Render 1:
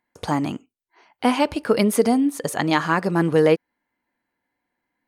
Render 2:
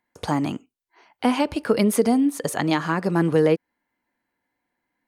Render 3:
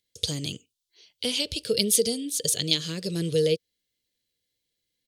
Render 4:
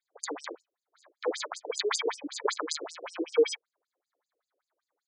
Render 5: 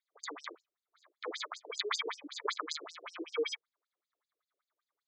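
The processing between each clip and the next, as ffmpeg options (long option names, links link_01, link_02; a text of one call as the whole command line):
ffmpeg -i in.wav -filter_complex "[0:a]acrossover=split=420[link_01][link_02];[link_02]acompressor=threshold=-21dB:ratio=6[link_03];[link_01][link_03]amix=inputs=2:normalize=0" out.wav
ffmpeg -i in.wav -af "firequalizer=gain_entry='entry(110,0);entry(260,-15);entry(470,-3);entry(820,-30);entry(3400,12);entry(13000,5)':delay=0.05:min_phase=1" out.wav
ffmpeg -i in.wav -af "acrusher=samples=16:mix=1:aa=0.000001,afftfilt=real='re*between(b*sr/1024,380*pow(6800/380,0.5+0.5*sin(2*PI*5.2*pts/sr))/1.41,380*pow(6800/380,0.5+0.5*sin(2*PI*5.2*pts/sr))*1.41)':imag='im*between(b*sr/1024,380*pow(6800/380,0.5+0.5*sin(2*PI*5.2*pts/sr))/1.41,380*pow(6800/380,0.5+0.5*sin(2*PI*5.2*pts/sr))*1.41)':win_size=1024:overlap=0.75,volume=4dB" out.wav
ffmpeg -i in.wav -af "highpass=280,equalizer=frequency=520:width_type=q:width=4:gain=-6,equalizer=frequency=790:width_type=q:width=4:gain=-5,equalizer=frequency=1200:width_type=q:width=4:gain=7,equalizer=frequency=2100:width_type=q:width=4:gain=6,equalizer=frequency=3500:width_type=q:width=4:gain=7,lowpass=frequency=6800:width=0.5412,lowpass=frequency=6800:width=1.3066,volume=-7dB" out.wav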